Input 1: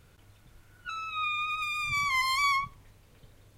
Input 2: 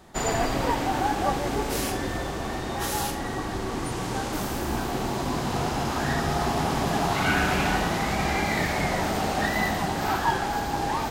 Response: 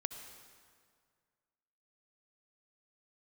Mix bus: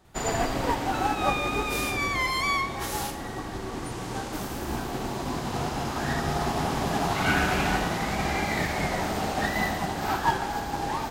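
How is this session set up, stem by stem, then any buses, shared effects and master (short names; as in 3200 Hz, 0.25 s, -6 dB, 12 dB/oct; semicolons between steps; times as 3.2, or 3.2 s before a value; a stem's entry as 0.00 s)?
-5.5 dB, 0.05 s, send 0 dB, dry
-3.0 dB, 0.00 s, send -4 dB, upward expander 1.5:1, over -39 dBFS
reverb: on, RT60 2.0 s, pre-delay 58 ms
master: dry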